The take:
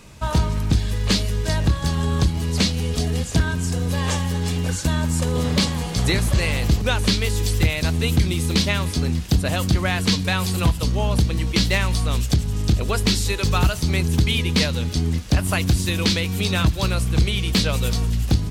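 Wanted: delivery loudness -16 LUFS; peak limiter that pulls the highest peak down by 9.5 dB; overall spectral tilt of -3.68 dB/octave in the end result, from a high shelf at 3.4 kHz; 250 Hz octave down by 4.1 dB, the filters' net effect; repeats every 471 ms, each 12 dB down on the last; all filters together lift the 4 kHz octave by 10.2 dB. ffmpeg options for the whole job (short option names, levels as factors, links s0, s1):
-af "equalizer=f=250:t=o:g=-6.5,highshelf=f=3400:g=7.5,equalizer=f=4000:t=o:g=7,alimiter=limit=0.376:level=0:latency=1,aecho=1:1:471|942|1413:0.251|0.0628|0.0157,volume=1.41"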